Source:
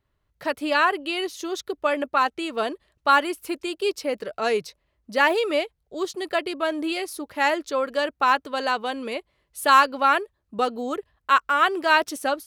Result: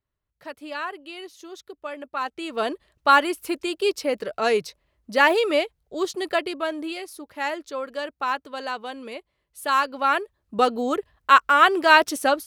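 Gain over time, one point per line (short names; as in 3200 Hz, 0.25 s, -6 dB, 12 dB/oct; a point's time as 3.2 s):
2 s -11 dB
2.71 s +2 dB
6.28 s +2 dB
7.03 s -6 dB
9.72 s -6 dB
10.63 s +4 dB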